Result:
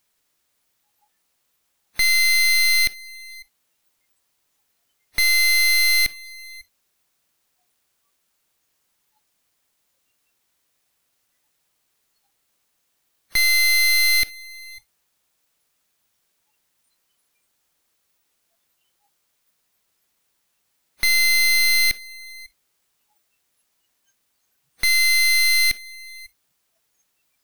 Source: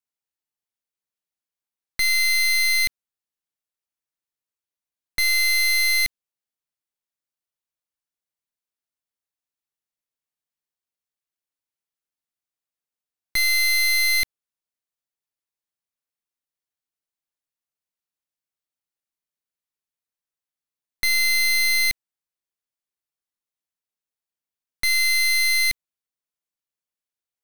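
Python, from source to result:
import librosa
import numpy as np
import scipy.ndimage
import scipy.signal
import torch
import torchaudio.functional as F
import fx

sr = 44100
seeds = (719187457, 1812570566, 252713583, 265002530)

p1 = fx.quant_dither(x, sr, seeds[0], bits=6, dither='triangular')
p2 = x + F.gain(torch.from_numpy(p1), -9.0).numpy()
p3 = p2 + 10.0 ** (-22.0 / 20.0) * np.pad(p2, (int(550 * sr / 1000.0), 0))[:len(p2)]
y = fx.noise_reduce_blind(p3, sr, reduce_db=26)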